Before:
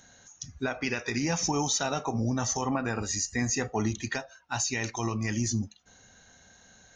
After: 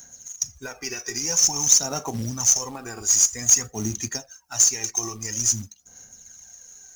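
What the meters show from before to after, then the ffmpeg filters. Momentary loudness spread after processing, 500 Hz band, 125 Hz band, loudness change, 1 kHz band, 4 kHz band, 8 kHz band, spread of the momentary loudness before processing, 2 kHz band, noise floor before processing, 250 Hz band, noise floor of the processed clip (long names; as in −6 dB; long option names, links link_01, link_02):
14 LU, −3.0 dB, −2.5 dB, +9.5 dB, −3.5 dB, +8.0 dB, +14.5 dB, 7 LU, −4.0 dB, −58 dBFS, −4.5 dB, −53 dBFS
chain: -af "aexciter=amount=14.4:drive=3.9:freq=5500,aphaser=in_gain=1:out_gain=1:delay=2.7:decay=0.57:speed=0.5:type=sinusoidal,acrusher=bits=4:mode=log:mix=0:aa=0.000001,volume=-6dB"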